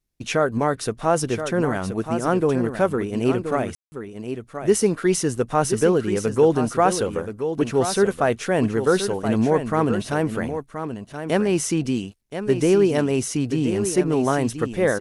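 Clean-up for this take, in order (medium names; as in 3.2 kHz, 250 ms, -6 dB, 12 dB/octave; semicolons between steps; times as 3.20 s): room tone fill 3.75–3.92 s; inverse comb 1026 ms -9 dB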